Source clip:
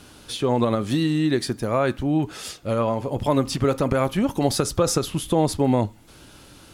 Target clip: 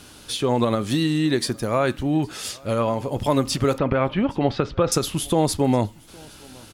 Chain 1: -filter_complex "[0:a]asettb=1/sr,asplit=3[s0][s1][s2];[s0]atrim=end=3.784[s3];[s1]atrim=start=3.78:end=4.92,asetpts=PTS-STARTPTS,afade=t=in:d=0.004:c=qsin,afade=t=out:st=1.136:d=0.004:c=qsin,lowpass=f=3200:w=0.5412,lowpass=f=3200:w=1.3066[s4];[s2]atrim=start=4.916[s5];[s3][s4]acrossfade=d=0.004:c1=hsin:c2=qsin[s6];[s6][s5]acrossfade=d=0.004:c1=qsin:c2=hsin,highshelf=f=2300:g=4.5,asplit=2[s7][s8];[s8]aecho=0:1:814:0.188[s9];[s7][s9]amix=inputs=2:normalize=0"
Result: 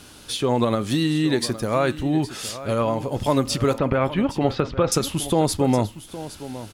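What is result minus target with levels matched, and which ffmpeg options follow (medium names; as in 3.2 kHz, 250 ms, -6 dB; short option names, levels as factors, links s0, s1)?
echo-to-direct +12 dB
-filter_complex "[0:a]asettb=1/sr,asplit=3[s0][s1][s2];[s0]atrim=end=3.784[s3];[s1]atrim=start=3.78:end=4.92,asetpts=PTS-STARTPTS,afade=t=in:d=0.004:c=qsin,afade=t=out:st=1.136:d=0.004:c=qsin,lowpass=f=3200:w=0.5412,lowpass=f=3200:w=1.3066[s4];[s2]atrim=start=4.916[s5];[s3][s4]acrossfade=d=0.004:c1=hsin:c2=qsin[s6];[s6][s5]acrossfade=d=0.004:c1=qsin:c2=hsin,highshelf=f=2300:g=4.5,asplit=2[s7][s8];[s8]aecho=0:1:814:0.0473[s9];[s7][s9]amix=inputs=2:normalize=0"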